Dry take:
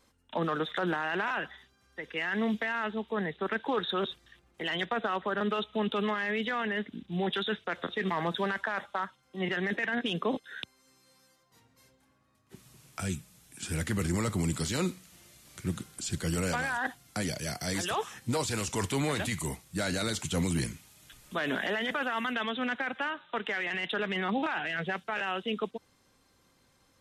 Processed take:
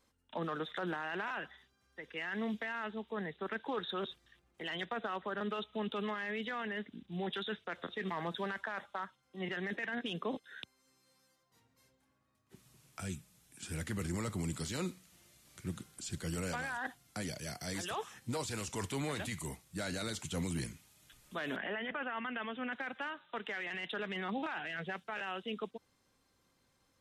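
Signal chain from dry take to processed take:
0:21.56–0:22.73: Butterworth low-pass 3,100 Hz 48 dB per octave
level −7.5 dB

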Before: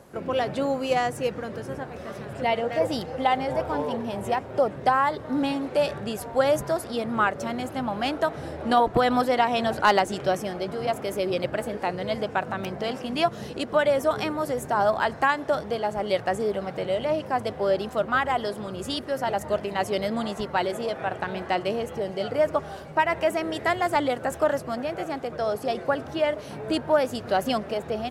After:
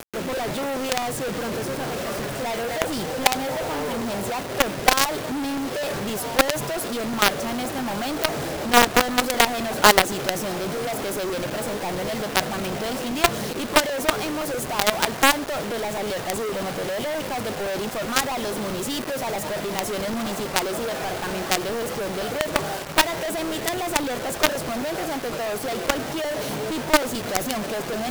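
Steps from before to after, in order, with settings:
high-pass filter 120 Hz 12 dB per octave
high-shelf EQ 6,100 Hz +2.5 dB
reversed playback
upward compression, threshold −26 dBFS
reversed playback
log-companded quantiser 2 bits
regular buffer underruns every 0.13 s, samples 128, repeat, from 0:00.37
level −1 dB

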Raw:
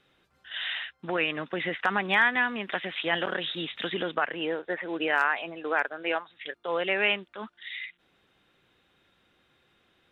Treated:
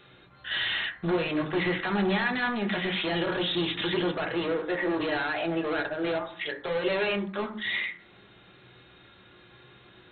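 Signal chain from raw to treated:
harmonic and percussive parts rebalanced percussive −6 dB
dynamic equaliser 1,500 Hz, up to −5 dB, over −38 dBFS, Q 0.87
in parallel at +2 dB: downward compressor, threshold −39 dBFS, peak gain reduction 15 dB
on the sum: gain into a clipping stage and back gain 33 dB
on a send at −3 dB: convolution reverb RT60 0.60 s, pre-delay 4 ms
on the sum: level +5.5 dB
MP2 32 kbit/s 16,000 Hz

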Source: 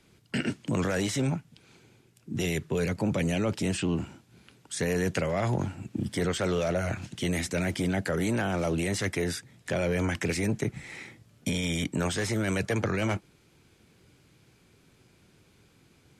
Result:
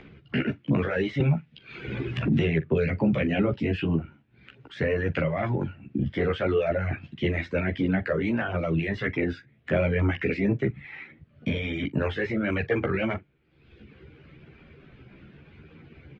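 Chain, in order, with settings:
low-pass filter 2,700 Hz 24 dB per octave
parametric band 910 Hz −6.5 dB 0.77 octaves
double-tracking delay 43 ms −11 dB
reverb reduction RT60 1.1 s
upward compression, threshold −45 dBFS
multi-voice chorus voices 2, 0.76 Hz, delay 14 ms, depth 1.3 ms
0:01.20–0:03.54: multiband upward and downward compressor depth 100%
level +8 dB

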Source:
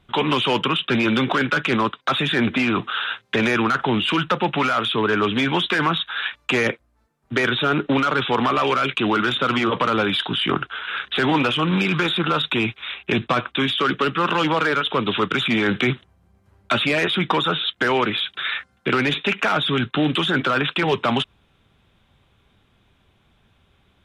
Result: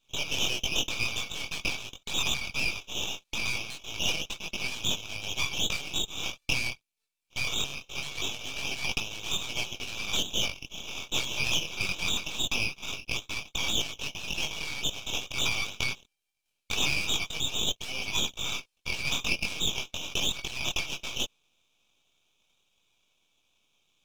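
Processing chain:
multi-voice chorus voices 2, 0.22 Hz, delay 21 ms, depth 2.1 ms
linear-phase brick-wall high-pass 2,200 Hz
half-wave rectification
level +3.5 dB

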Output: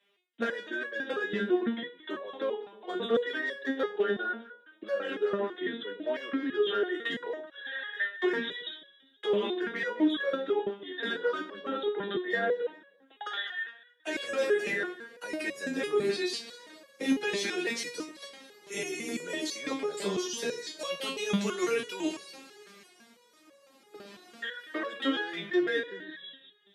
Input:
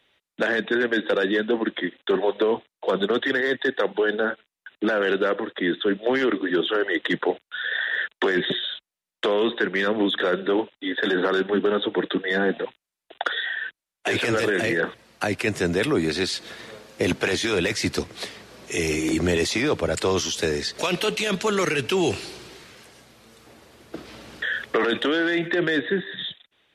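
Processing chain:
Butterworth high-pass 150 Hz
delay that swaps between a low-pass and a high-pass 104 ms, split 1,000 Hz, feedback 53%, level −10 dB
step-sequenced resonator 6 Hz 200–560 Hz
level +5.5 dB

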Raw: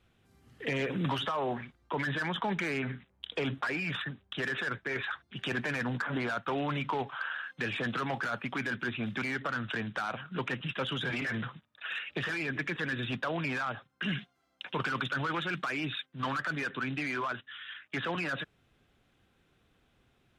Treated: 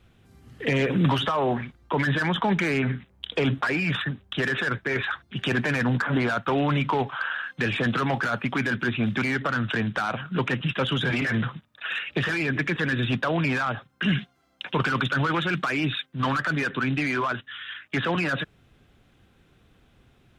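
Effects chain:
low-shelf EQ 270 Hz +5.5 dB
level +7 dB

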